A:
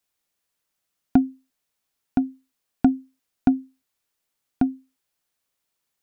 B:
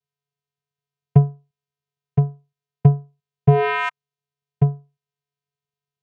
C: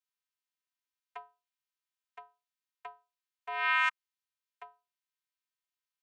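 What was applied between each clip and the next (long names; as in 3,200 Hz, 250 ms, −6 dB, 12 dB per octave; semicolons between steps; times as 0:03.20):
sound drawn into the spectrogram rise, 0:03.47–0:03.89, 560–1,800 Hz −15 dBFS; channel vocoder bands 4, square 142 Hz; notch filter 1,200 Hz, Q 9; level +2 dB
high-pass filter 1,100 Hz 24 dB per octave; level −2.5 dB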